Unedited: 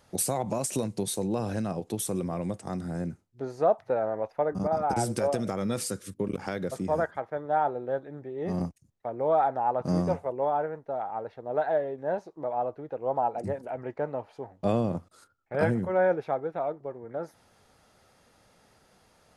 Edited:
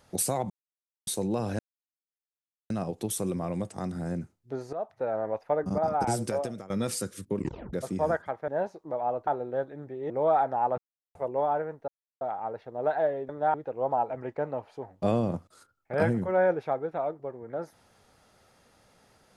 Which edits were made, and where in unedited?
0.5–1.07 mute
1.59 insert silence 1.11 s
3.62–4.14 fade in, from -15.5 dB
4.87–5.59 fade out equal-power, to -19 dB
6.28 tape stop 0.34 s
7.37–7.62 swap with 12–12.79
8.45–9.14 cut
9.82–10.19 mute
10.92 insert silence 0.33 s
13.36–13.72 cut

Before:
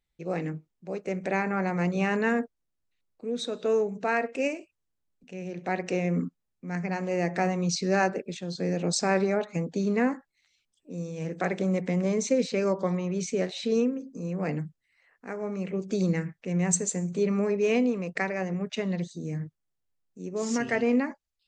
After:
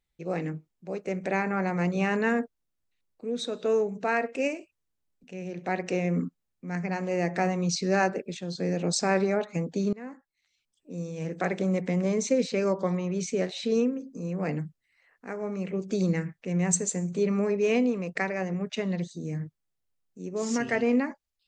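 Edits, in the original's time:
9.93–10.99 fade in, from -23.5 dB

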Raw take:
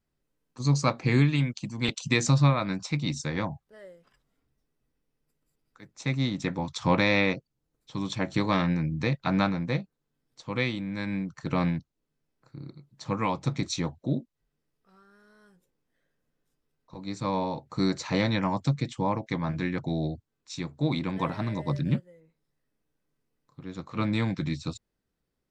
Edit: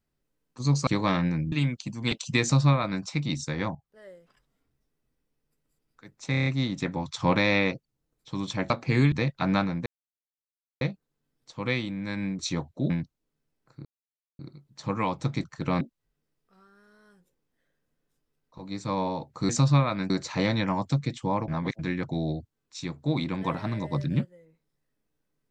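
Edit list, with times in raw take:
0.87–1.29 swap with 8.32–8.97
2.19–2.8 copy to 17.85
3.52–3.85 fade in, from -14 dB
6.08 stutter 0.03 s, 6 plays
9.71 insert silence 0.95 s
11.29–11.66 swap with 13.66–14.17
12.61 insert silence 0.54 s
19.23–19.54 reverse

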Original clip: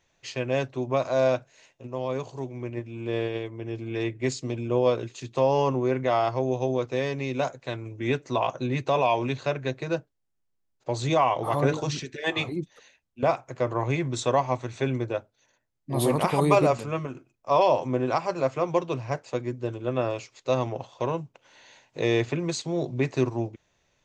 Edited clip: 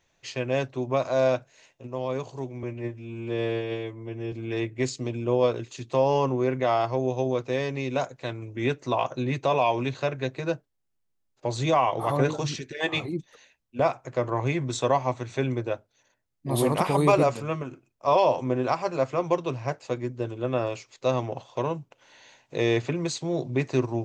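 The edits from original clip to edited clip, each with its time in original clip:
2.63–3.76 stretch 1.5×

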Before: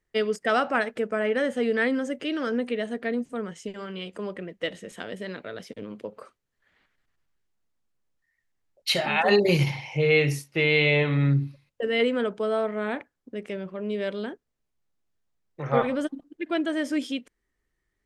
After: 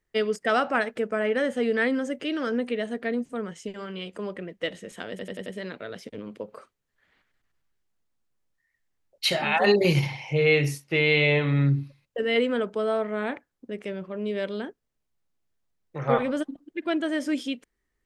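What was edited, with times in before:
5.1 stutter 0.09 s, 5 plays

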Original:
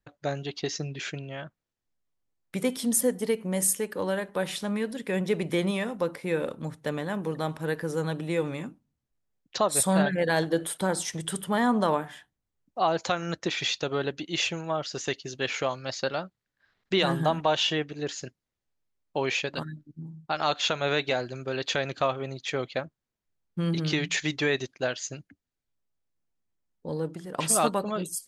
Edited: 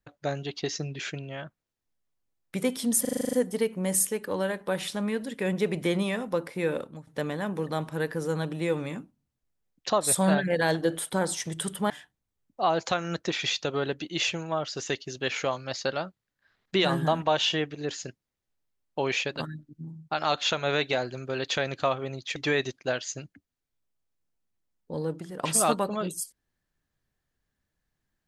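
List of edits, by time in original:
3.01 stutter 0.04 s, 9 plays
6.42–6.75 fade out, to -19 dB
11.58–12.08 cut
22.54–24.31 cut

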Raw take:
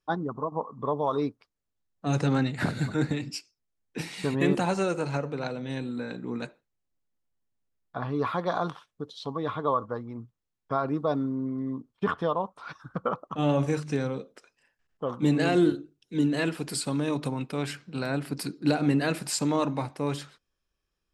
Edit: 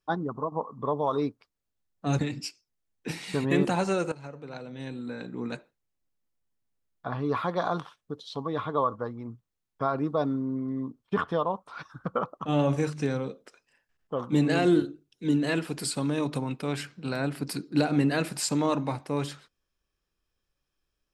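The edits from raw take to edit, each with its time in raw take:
2.19–3.09 cut
5.02–6.45 fade in linear, from -16 dB

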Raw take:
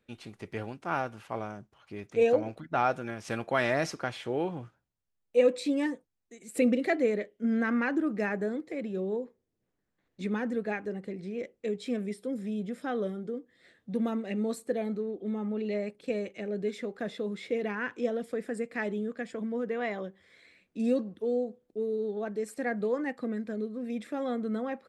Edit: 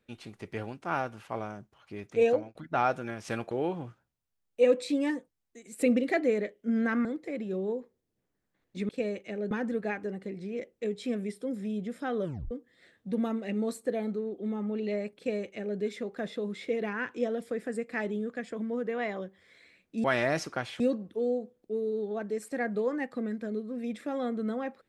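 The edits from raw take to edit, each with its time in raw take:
2.29–2.55 fade out
3.51–4.27 move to 20.86
7.81–8.49 cut
13.06 tape stop 0.27 s
15.99–16.61 copy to 10.33

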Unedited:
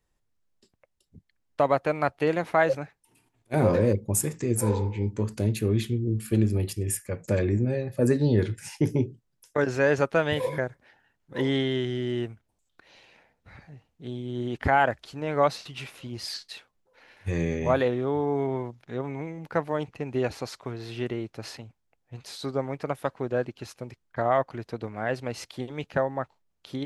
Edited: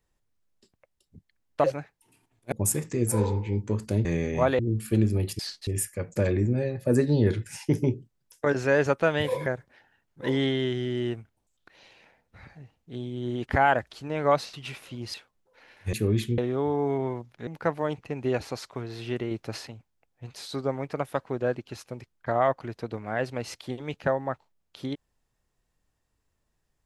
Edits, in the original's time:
1.64–2.67 cut
3.55–4.01 cut
5.54–5.99 swap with 17.33–17.87
16.26–16.54 move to 6.79
18.96–19.37 cut
21.21–21.47 gain +3.5 dB

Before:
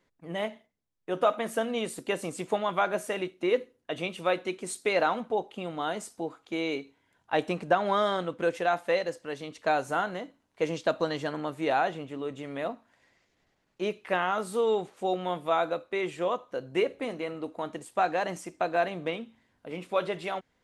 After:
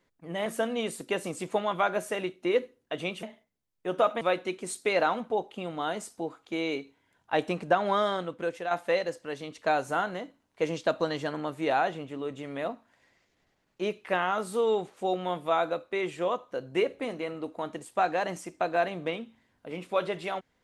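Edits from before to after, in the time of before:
0.46–1.44 move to 4.21
7.94–8.71 fade out, to -7 dB

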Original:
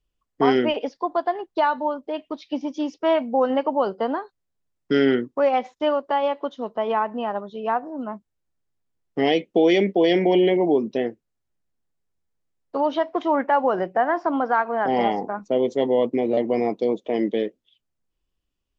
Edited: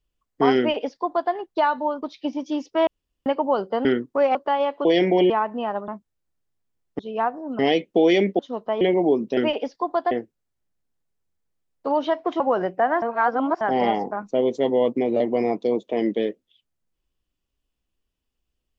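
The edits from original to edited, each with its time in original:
0.58–1.32 copy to 11
2.02–2.3 cut
3.15–3.54 room tone
4.13–5.07 cut
5.57–5.98 cut
6.48–6.9 swap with 9.99–10.44
7.48–8.08 move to 9.19
13.29–13.57 cut
14.19–14.78 reverse

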